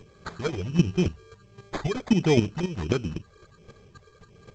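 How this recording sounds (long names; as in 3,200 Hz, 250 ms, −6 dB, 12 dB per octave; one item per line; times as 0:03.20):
phaser sweep stages 8, 1.4 Hz, lowest notch 200–3,700 Hz
chopped level 3.8 Hz, depth 65%, duty 10%
aliases and images of a low sample rate 2,800 Hz, jitter 0%
G.722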